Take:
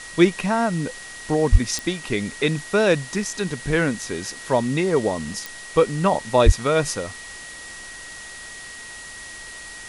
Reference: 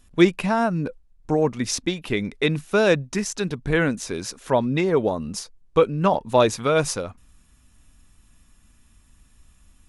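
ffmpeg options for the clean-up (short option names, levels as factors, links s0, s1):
-filter_complex "[0:a]adeclick=t=4,bandreject=f=1900:w=30,asplit=3[s0][s1][s2];[s0]afade=t=out:st=1.51:d=0.02[s3];[s1]highpass=f=140:w=0.5412,highpass=f=140:w=1.3066,afade=t=in:st=1.51:d=0.02,afade=t=out:st=1.63:d=0.02[s4];[s2]afade=t=in:st=1.63:d=0.02[s5];[s3][s4][s5]amix=inputs=3:normalize=0,asplit=3[s6][s7][s8];[s6]afade=t=out:st=6.45:d=0.02[s9];[s7]highpass=f=140:w=0.5412,highpass=f=140:w=1.3066,afade=t=in:st=6.45:d=0.02,afade=t=out:st=6.57:d=0.02[s10];[s8]afade=t=in:st=6.57:d=0.02[s11];[s9][s10][s11]amix=inputs=3:normalize=0,afwtdn=0.013"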